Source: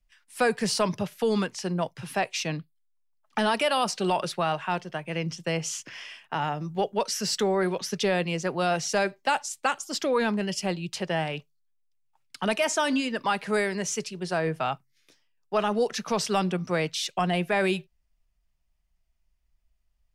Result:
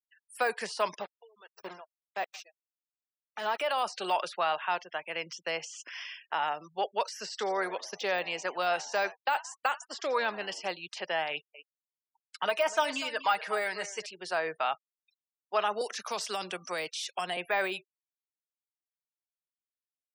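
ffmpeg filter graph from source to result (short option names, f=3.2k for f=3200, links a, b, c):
-filter_complex "[0:a]asettb=1/sr,asplit=3[a][b][c];[a]atrim=end=1.014[d];[b]atrim=start=1.01:end=3.6,asetpts=PTS-STARTPTS,afade=t=in:d=0.004:c=qsin,afade=t=out:st=2.586:d=0.004:c=qsin,aecho=1:1:164|328|492:0.112|0.0348|0.0108,atrim=end_sample=114219,aeval=exprs='val(0)*gte(abs(val(0)),0.0335)':c=same,aeval=exprs='val(0)*pow(10,-28*(0.5-0.5*cos(2*PI*1.6*n/s))/20)':c=same[e];[c]atrim=start=3.596[f];[d][e]acrossfade=d=0.004:c1=hsin:c2=qsin[g];[g][f]acrossfade=d=0.004:c1=qsin:c2=hsin,asettb=1/sr,asplit=3[h][i][j];[h]atrim=end=7.294[k];[i]atrim=start=7.29:end=10.68,asetpts=PTS-STARTPTS,afade=t=in:d=0.004:c=qsin,afade=t=out:st=3.386:d=0.004:c=qsin,acrossover=split=8200[l][m];[m]acompressor=threshold=-47dB:ratio=4:attack=1:release=60[n];[l][n]amix=inputs=2:normalize=0,asplit=6[o][p][q][r][s][t];[p]adelay=84,afreqshift=86,volume=-20dB[u];[q]adelay=168,afreqshift=172,volume=-24.2dB[v];[r]adelay=252,afreqshift=258,volume=-28.3dB[w];[s]adelay=336,afreqshift=344,volume=-32.5dB[x];[t]adelay=420,afreqshift=430,volume=-36.6dB[y];[o][u][v][w][x][y]amix=inputs=6:normalize=0,atrim=end_sample=149499,agate=range=-33dB:threshold=-33dB:ratio=3:release=100:detection=peak[z];[j]atrim=start=10.676[aa];[k][z]acrossfade=d=0.004:c1=hsin:c2=qsin[ab];[ab][aa]acrossfade=d=0.004:c1=qsin:c2=hsin,asettb=1/sr,asplit=3[ac][ad][ae];[ac]atrim=end=11.304[af];[ad]atrim=start=11.3:end=14.06,asetpts=PTS-STARTPTS,afade=t=in:d=0.004:c=qsin,afade=t=out:st=2.756:d=0.004:c=qsin,aecho=1:1:6.4:0.5,atrim=end_sample=121716,aecho=1:1:243:0.168,atrim=end_sample=121716[ag];[ae]atrim=start=14.056[ah];[af][ag]acrossfade=d=0.004:c1=hsin:c2=qsin[ai];[ai][ah]acrossfade=d=0.004:c1=qsin:c2=hsin,asettb=1/sr,asplit=3[aj][ak][al];[aj]atrim=end=15.814[am];[ak]atrim=start=15.81:end=17.37,asetpts=PTS-STARTPTS,afade=t=in:d=0.004:c=qsin,afade=t=out:st=1.556:d=0.004:c=qsin,highshelf=f=4.8k:g=12,acrossover=split=350|3000[an][ao][ap];[ao]acompressor=threshold=-27dB:ratio=6:attack=3.2:release=140:knee=2.83:detection=peak[aq];[an][aq][ap]amix=inputs=3:normalize=0[ar];[al]atrim=start=17.366[as];[am][ar]acrossfade=d=0.004:c1=hsin:c2=qsin[at];[at][as]acrossfade=d=0.004:c1=qsin:c2=hsin,highpass=660,deesser=0.9,afftfilt=real='re*gte(hypot(re,im),0.00398)':imag='im*gte(hypot(re,im),0.00398)':win_size=1024:overlap=0.75"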